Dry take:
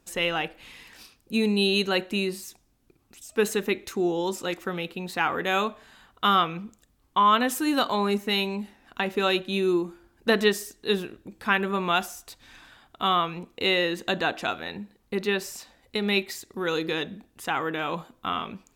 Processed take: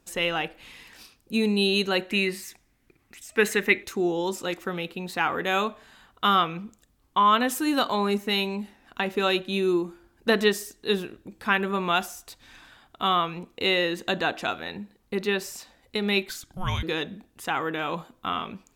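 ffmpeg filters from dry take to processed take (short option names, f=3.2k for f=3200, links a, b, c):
-filter_complex "[0:a]asettb=1/sr,asplit=3[a][b][c];[a]atrim=end=2.094[d];[b]atrim=start=2.09:end=3.83,asetpts=PTS-STARTPTS,afade=t=in:d=0.004:c=qsin,afade=t=out:st=1.736:d=0.004:c=qsin,equalizer=f=2k:t=o:w=0.69:g=13[e];[c]atrim=start=3.826[f];[d][e]acrossfade=d=0.004:c1=hsin:c2=qsin[g];[g][f]acrossfade=d=0.004:c1=qsin:c2=hsin,asettb=1/sr,asplit=3[h][i][j];[h]atrim=end=16.294[k];[i]atrim=start=16.29:end=16.83,asetpts=PTS-STARTPTS,afade=t=in:d=0.004:c=qsin,afade=t=out:st=0.536:d=0.004:c=qsin,afreqshift=-380[l];[j]atrim=start=16.826[m];[k][l]acrossfade=d=0.004:c1=hsin:c2=qsin[n];[n][m]acrossfade=d=0.004:c1=qsin:c2=hsin"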